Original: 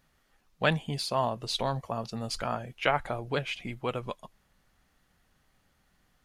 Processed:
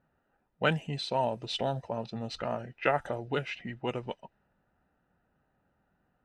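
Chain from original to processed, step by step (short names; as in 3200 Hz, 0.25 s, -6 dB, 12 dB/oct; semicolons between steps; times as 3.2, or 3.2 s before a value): formant shift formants -2 st; notch comb 1100 Hz; low-pass opened by the level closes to 1300 Hz, open at -25.5 dBFS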